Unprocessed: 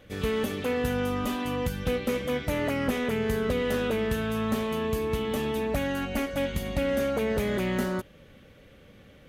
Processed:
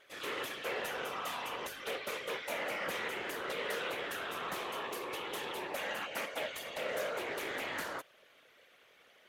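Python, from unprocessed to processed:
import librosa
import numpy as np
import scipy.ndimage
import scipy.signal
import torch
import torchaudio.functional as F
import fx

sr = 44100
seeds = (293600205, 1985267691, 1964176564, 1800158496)

y = scipy.signal.sosfilt(scipy.signal.butter(2, 780.0, 'highpass', fs=sr, output='sos'), x)
y = fx.whisperise(y, sr, seeds[0])
y = fx.doppler_dist(y, sr, depth_ms=0.15)
y = y * 10.0 ** (-3.0 / 20.0)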